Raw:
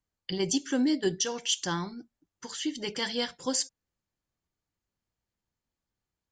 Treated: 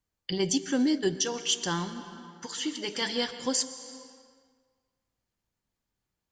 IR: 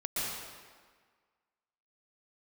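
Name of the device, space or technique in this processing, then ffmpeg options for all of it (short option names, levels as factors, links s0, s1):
compressed reverb return: -filter_complex "[0:a]asettb=1/sr,asplit=3[s0][s1][s2];[s0]atrim=end=2.464[s3];[s1]atrim=start=2.46:end=3.02,asetpts=PTS-STARTPTS,afade=t=in:d=0.004:c=qsin,afade=t=out:st=0.556:d=0.004:c=qsin,highpass=f=280:p=1[s4];[s2]atrim=start=3.016[s5];[s3][s4]acrossfade=d=0.004:c1=hsin:c2=qsin[s6];[s6][s5]acrossfade=d=0.004:c1=qsin:c2=hsin,asplit=2[s7][s8];[1:a]atrim=start_sample=2205[s9];[s8][s9]afir=irnorm=-1:irlink=0,acompressor=threshold=0.0355:ratio=6,volume=0.316[s10];[s7][s10]amix=inputs=2:normalize=0"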